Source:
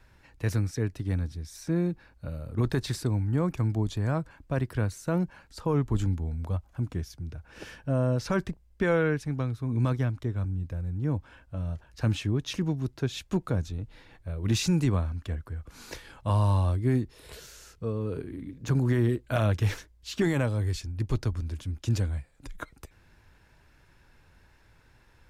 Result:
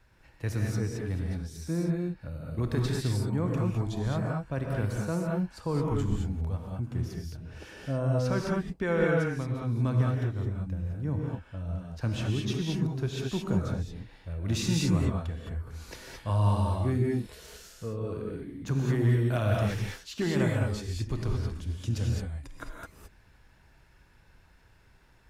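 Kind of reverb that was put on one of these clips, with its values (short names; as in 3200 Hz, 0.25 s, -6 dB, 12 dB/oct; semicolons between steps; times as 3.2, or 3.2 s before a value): non-linear reverb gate 0.24 s rising, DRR -1.5 dB; gain -4.5 dB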